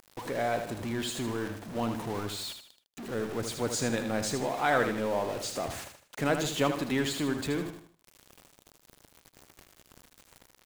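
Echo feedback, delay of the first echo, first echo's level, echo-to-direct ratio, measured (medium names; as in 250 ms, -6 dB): 38%, 78 ms, -7.5 dB, -7.0 dB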